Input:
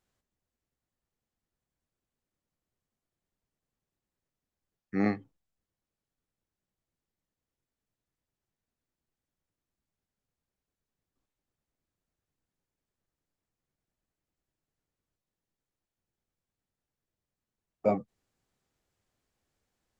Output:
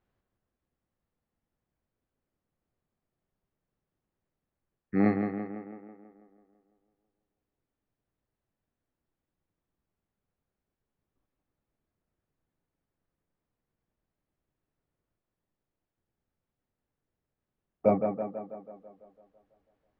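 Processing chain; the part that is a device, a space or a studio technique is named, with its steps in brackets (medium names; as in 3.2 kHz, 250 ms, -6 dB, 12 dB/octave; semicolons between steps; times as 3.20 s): tape echo 165 ms, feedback 64%, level -5 dB, low-pass 2.8 kHz; phone in a pocket (low-pass 3.4 kHz; treble shelf 2.2 kHz -8.5 dB); trim +3.5 dB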